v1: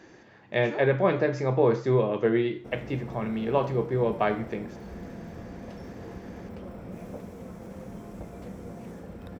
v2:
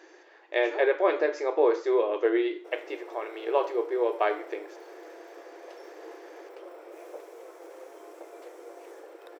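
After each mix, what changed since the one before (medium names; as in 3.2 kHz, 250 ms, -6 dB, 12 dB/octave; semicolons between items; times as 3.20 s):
master: add brick-wall FIR high-pass 310 Hz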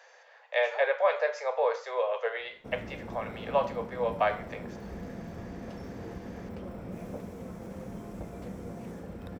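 speech: add steep high-pass 490 Hz 72 dB/octave; master: remove brick-wall FIR high-pass 310 Hz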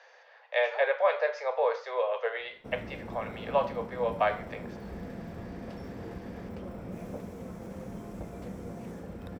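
speech: add low-pass 5.4 kHz 24 dB/octave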